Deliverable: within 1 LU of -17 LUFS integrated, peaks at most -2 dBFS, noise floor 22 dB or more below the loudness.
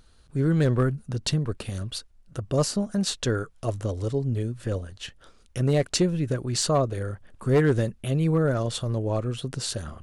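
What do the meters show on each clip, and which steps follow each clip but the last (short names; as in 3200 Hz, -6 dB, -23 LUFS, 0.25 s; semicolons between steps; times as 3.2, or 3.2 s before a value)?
clipped 0.4%; flat tops at -14.0 dBFS; loudness -26.5 LUFS; peak -14.0 dBFS; loudness target -17.0 LUFS
-> clip repair -14 dBFS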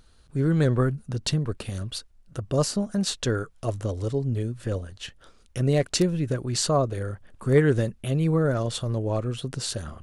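clipped 0.0%; loudness -26.0 LUFS; peak -6.5 dBFS; loudness target -17.0 LUFS
-> gain +9 dB; limiter -2 dBFS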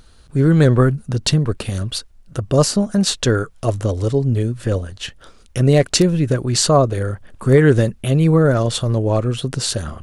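loudness -17.5 LUFS; peak -2.0 dBFS; noise floor -48 dBFS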